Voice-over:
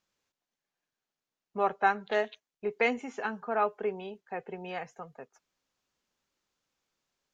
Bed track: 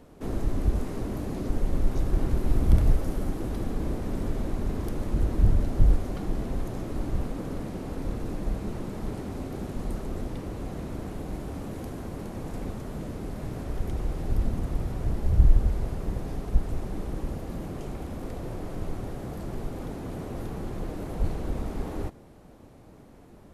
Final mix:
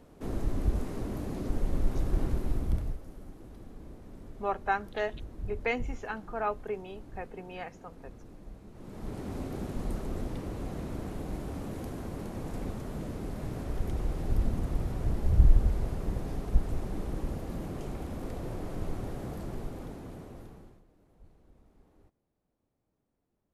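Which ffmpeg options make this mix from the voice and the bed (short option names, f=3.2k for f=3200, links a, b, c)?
-filter_complex "[0:a]adelay=2850,volume=-3.5dB[a];[1:a]volume=12dB,afade=t=out:st=2.23:d=0.76:silence=0.199526,afade=t=in:st=8.73:d=0.61:silence=0.16788,afade=t=out:st=19.25:d=1.58:silence=0.0398107[b];[a][b]amix=inputs=2:normalize=0"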